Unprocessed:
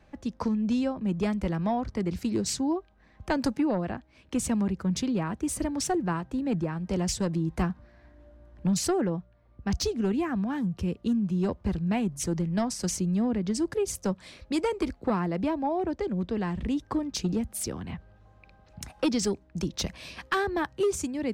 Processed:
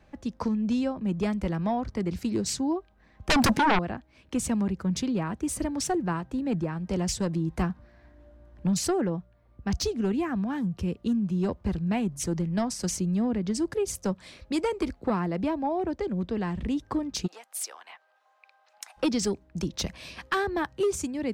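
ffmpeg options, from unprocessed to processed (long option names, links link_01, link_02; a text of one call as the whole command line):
ffmpeg -i in.wav -filter_complex "[0:a]asettb=1/sr,asplit=3[link_01][link_02][link_03];[link_01]atrim=end=3.294[link_04];[link_02]atrim=start=3.29:end=3.79,asetpts=PTS-STARTPTS,afade=type=in:duration=0.004:curve=qsin,afade=type=out:start_time=0.496:duration=0.004:curve=qsin,aeval=exprs='0.133*sin(PI/2*3.55*val(0)/0.133)':channel_layout=same[link_05];[link_03]atrim=start=3.786[link_06];[link_04][link_05]acrossfade=duration=0.004:curve1=hsin:curve2=qsin[link_07];[link_07][link_06]acrossfade=duration=0.004:curve1=qsin:curve2=hsin,asplit=3[link_08][link_09][link_10];[link_08]afade=type=out:start_time=17.26:duration=0.02[link_11];[link_09]highpass=frequency=710:width=0.5412,highpass=frequency=710:width=1.3066,afade=type=in:start_time=17.26:duration=0.02,afade=type=out:start_time=18.96:duration=0.02[link_12];[link_10]afade=type=in:start_time=18.96:duration=0.02[link_13];[link_11][link_12][link_13]amix=inputs=3:normalize=0" out.wav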